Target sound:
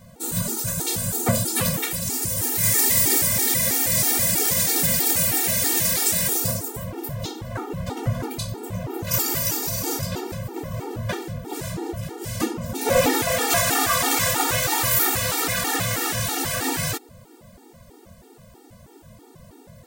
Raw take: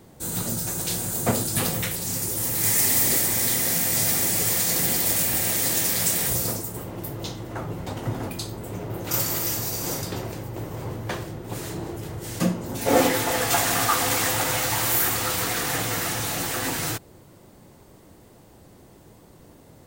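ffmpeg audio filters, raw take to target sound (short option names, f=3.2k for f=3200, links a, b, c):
-af "asoftclip=type=hard:threshold=-14dB,afftfilt=real='re*gt(sin(2*PI*3.1*pts/sr)*(1-2*mod(floor(b*sr/1024/240),2)),0)':imag='im*gt(sin(2*PI*3.1*pts/sr)*(1-2*mod(floor(b*sr/1024/240),2)),0)':win_size=1024:overlap=0.75,volume=5.5dB"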